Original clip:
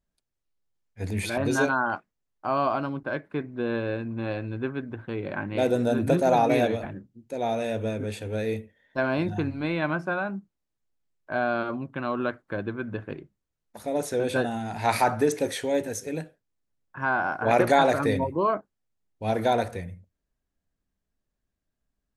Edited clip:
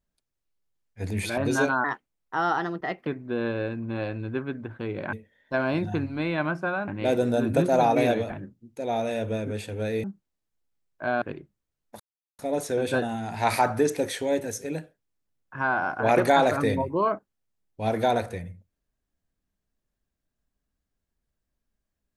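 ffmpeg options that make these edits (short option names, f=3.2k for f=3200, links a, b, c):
-filter_complex "[0:a]asplit=8[a][b][c][d][e][f][g][h];[a]atrim=end=1.844[i];[b]atrim=start=1.84:end=3.35,asetpts=PTS-STARTPTS,asetrate=54243,aresample=44100,atrim=end_sample=54139,asetpts=PTS-STARTPTS[j];[c]atrim=start=3.346:end=5.412[k];[d]atrim=start=8.568:end=10.322[l];[e]atrim=start=5.408:end=8.572[m];[f]atrim=start=10.318:end=11.502[n];[g]atrim=start=13.028:end=13.81,asetpts=PTS-STARTPTS,afade=t=out:st=0.778:d=0.004:c=hsin,apad=pad_dur=0.39[o];[h]atrim=start=13.81,asetpts=PTS-STARTPTS,afade=t=in:d=0.004:c=hsin[p];[i][j]acrossfade=d=0.004:c1=hsin:c2=hsin[q];[q][k]acrossfade=d=0.004:c1=hsin:c2=hsin[r];[r][l]acrossfade=d=0.004:c1=hsin:c2=hsin[s];[s][m]acrossfade=d=0.004:c1=hsin:c2=hsin[t];[t][n]acrossfade=d=0.004:c1=hsin:c2=hsin[u];[o][p]concat=n=2:v=0:a=1[v];[u][v]acrossfade=d=0.004:c1=hsin:c2=hsin"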